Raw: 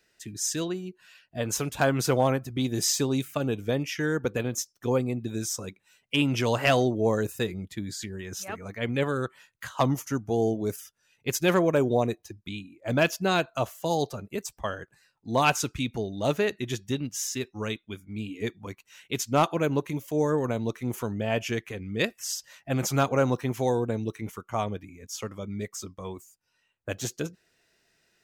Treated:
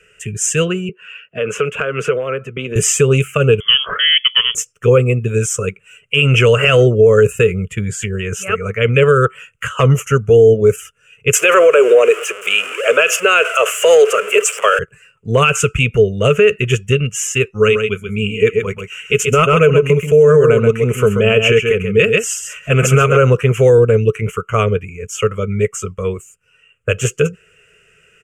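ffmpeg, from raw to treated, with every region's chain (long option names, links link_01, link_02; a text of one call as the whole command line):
ffmpeg -i in.wav -filter_complex "[0:a]asettb=1/sr,asplit=3[link_01][link_02][link_03];[link_01]atrim=end=0.894[link_04];[link_02]atrim=start=0.89:end=2.76,asetpts=PTS-STARTPTS,afade=type=in:duration=0.004:curve=qsin,afade=type=out:start_time=1.866:duration=0.004:curve=qsin,acrossover=split=180 4200:gain=0.0708 1 0.141[link_05][link_06][link_07];[link_05][link_06][link_07]amix=inputs=3:normalize=0,acompressor=threshold=-30dB:ratio=8:attack=3.2:release=140:knee=1:detection=peak[link_08];[link_03]atrim=start=2.756[link_09];[link_04][link_08]acrossfade=duration=0.004:curve1=hsin:curve2=qsin[link_10];[link_10][link_09]acrossfade=duration=0.004:curve1=qsin:curve2=hsin,asettb=1/sr,asplit=3[link_11][link_12][link_13];[link_11]atrim=end=3.604[link_14];[link_12]atrim=start=3.6:end=4.55,asetpts=PTS-STARTPTS,afade=type=in:duration=0.004:curve=qsin,afade=type=out:start_time=0.946:duration=0.004:curve=qsin,equalizer=frequency=76:width=0.44:gain=-11,lowpass=frequency=3000:width_type=q:width=0.5098,lowpass=frequency=3000:width_type=q:width=0.6013,lowpass=frequency=3000:width_type=q:width=0.9,lowpass=frequency=3000:width_type=q:width=2.563,afreqshift=-3500[link_15];[link_13]atrim=start=4.546[link_16];[link_14][link_15]acrossfade=duration=0.004:curve1=hsin:curve2=qsin[link_17];[link_17][link_16]acrossfade=duration=0.004:curve1=qsin:curve2=hsin,asettb=1/sr,asplit=3[link_18][link_19][link_20];[link_18]atrim=end=11.334[link_21];[link_19]atrim=start=11.33:end=14.79,asetpts=PTS-STARTPTS,afade=type=in:duration=0.004:curve=qsin,afade=type=out:start_time=3.456:duration=0.004:curve=qsin,aeval=exprs='val(0)+0.5*0.0119*sgn(val(0))':channel_layout=same,highpass=frequency=450:width=0.5412,highpass=frequency=450:width=1.3066,acontrast=82[link_22];[link_20]atrim=start=14.786[link_23];[link_21][link_22]acrossfade=duration=0.004:curve1=hsin:curve2=qsin[link_24];[link_24][link_23]acrossfade=duration=0.004:curve1=qsin:curve2=hsin,asettb=1/sr,asplit=3[link_25][link_26][link_27];[link_25]atrim=end=17.534[link_28];[link_26]atrim=start=17.53:end=23.18,asetpts=PTS-STARTPTS,afade=type=in:duration=0.004:curve=qsin,afade=type=out:start_time=5.646:duration=0.004:curve=qsin,aecho=1:1:4.7:0.31,atrim=end_sample=249165,aecho=1:1:133:0.447,atrim=end_sample=249165[link_29];[link_27]atrim=start=23.176[link_30];[link_28][link_29]acrossfade=duration=0.004:curve1=hsin:curve2=qsin[link_31];[link_31][link_30]acrossfade=duration=0.004:curve1=qsin:curve2=hsin,firequalizer=gain_entry='entry(160,0);entry(300,-21);entry(430,6);entry(810,-22);entry(1300,4);entry(1800,-6);entry(2800,7);entry(3900,-27);entry(7400,-2);entry(15000,-22)':delay=0.05:min_phase=1,alimiter=level_in=19.5dB:limit=-1dB:release=50:level=0:latency=1,volume=-1dB" out.wav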